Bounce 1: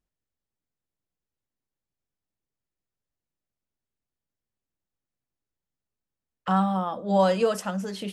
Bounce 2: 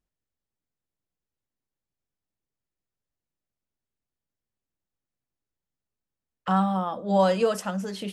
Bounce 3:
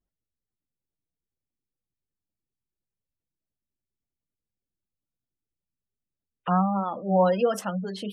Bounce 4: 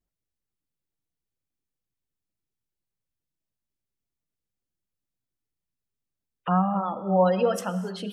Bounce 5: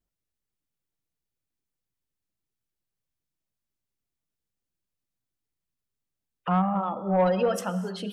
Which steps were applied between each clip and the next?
no processing that can be heard
gate on every frequency bin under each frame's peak −25 dB strong; pitch vibrato 1.5 Hz 81 cents
reverb whose tail is shaped and stops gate 310 ms flat, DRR 12 dB
soft clipping −14.5 dBFS, distortion −19 dB

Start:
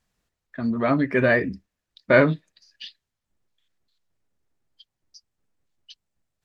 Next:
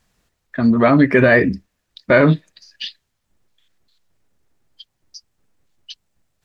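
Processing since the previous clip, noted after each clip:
boost into a limiter +11.5 dB
level −1 dB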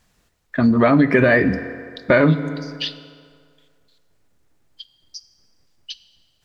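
feedback delay network reverb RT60 2.1 s, low-frequency decay 0.8×, high-frequency decay 0.65×, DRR 13.5 dB
downward compressor 2.5 to 1, threshold −15 dBFS, peak gain reduction 6 dB
level +2.5 dB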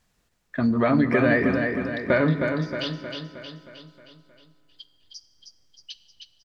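repeating echo 313 ms, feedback 54%, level −5.5 dB
level −6.5 dB

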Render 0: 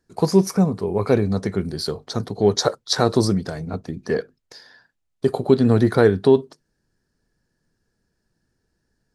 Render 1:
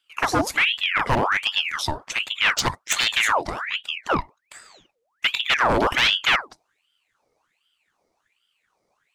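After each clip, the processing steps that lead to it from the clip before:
wave folding −13 dBFS
ring modulator whose carrier an LFO sweeps 1,800 Hz, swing 75%, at 1.3 Hz
level +3 dB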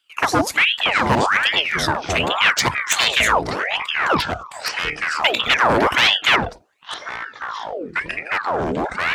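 high-pass filter 74 Hz
delay with pitch and tempo change per echo 542 ms, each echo −6 semitones, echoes 2, each echo −6 dB
level +3.5 dB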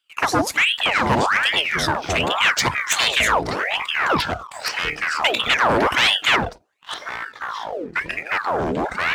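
leveller curve on the samples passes 1
level −4 dB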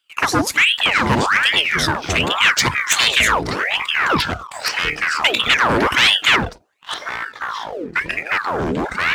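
dynamic equaliser 690 Hz, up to −7 dB, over −34 dBFS, Q 1.4
level +4 dB

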